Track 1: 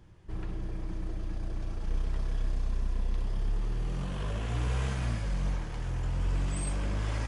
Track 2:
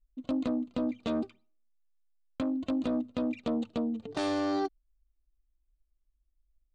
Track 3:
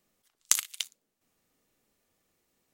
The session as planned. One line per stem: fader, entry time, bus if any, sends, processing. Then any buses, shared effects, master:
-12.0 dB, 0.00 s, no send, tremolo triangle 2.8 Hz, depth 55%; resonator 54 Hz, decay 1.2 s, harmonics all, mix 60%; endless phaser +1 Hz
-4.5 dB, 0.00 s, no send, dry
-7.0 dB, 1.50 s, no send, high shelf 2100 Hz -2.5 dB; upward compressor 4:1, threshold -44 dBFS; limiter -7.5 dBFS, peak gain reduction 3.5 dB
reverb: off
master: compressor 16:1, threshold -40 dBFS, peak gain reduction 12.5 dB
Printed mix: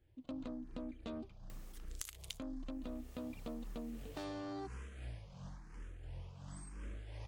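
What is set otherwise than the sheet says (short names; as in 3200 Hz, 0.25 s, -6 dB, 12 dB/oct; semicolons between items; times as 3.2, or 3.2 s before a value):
stem 1: missing resonator 54 Hz, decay 1.2 s, harmonics all, mix 60%; stem 2 -4.5 dB -> -11.0 dB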